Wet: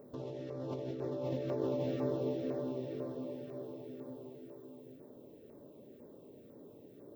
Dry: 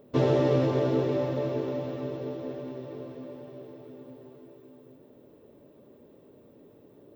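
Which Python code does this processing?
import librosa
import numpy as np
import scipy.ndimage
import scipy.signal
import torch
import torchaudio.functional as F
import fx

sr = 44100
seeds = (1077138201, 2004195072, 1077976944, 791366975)

y = fx.low_shelf(x, sr, hz=84.0, db=-7.5)
y = fx.over_compress(y, sr, threshold_db=-33.0, ratio=-1.0)
y = fx.filter_lfo_notch(y, sr, shape='saw_down', hz=2.0, low_hz=840.0, high_hz=3400.0, q=0.79)
y = y * 10.0 ** (-3.5 / 20.0)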